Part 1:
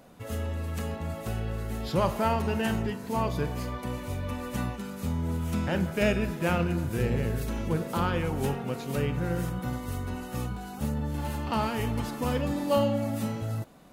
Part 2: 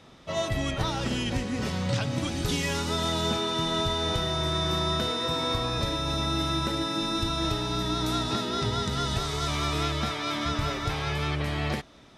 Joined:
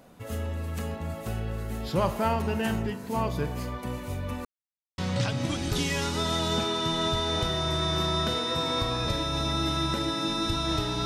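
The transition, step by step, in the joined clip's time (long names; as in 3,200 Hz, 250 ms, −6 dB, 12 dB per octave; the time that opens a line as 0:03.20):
part 1
0:04.45–0:04.98: silence
0:04.98: continue with part 2 from 0:01.71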